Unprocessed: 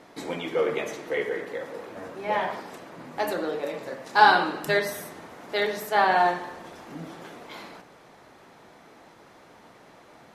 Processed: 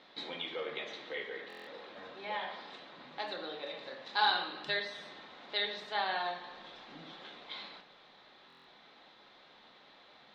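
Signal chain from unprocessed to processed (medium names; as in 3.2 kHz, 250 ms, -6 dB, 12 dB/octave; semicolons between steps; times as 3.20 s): bass shelf 450 Hz -8.5 dB; in parallel at +2.5 dB: compression, threshold -35 dBFS, peak gain reduction 20.5 dB; on the sum: four-pole ladder low-pass 4.1 kHz, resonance 70%; reverberation, pre-delay 4 ms, DRR 8 dB; buffer glitch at 1.48/8.48 s, samples 1024, times 7; trim -3.5 dB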